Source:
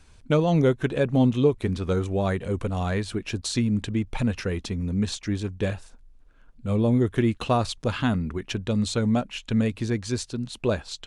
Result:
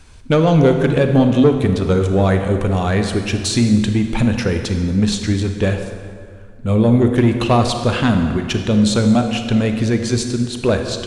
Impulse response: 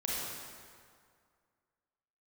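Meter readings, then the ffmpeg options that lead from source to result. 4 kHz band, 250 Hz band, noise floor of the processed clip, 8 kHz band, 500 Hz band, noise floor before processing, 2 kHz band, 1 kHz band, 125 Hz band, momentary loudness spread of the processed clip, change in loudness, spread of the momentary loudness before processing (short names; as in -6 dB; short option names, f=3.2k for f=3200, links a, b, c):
+9.5 dB, +9.5 dB, -36 dBFS, +9.5 dB, +8.5 dB, -53 dBFS, +9.0 dB, +9.0 dB, +9.0 dB, 7 LU, +9.0 dB, 8 LU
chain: -filter_complex "[0:a]asoftclip=type=tanh:threshold=-15dB,asplit=2[a][b];[1:a]atrim=start_sample=2205[c];[b][c]afir=irnorm=-1:irlink=0,volume=-7.5dB[d];[a][d]amix=inputs=2:normalize=0,volume=6.5dB"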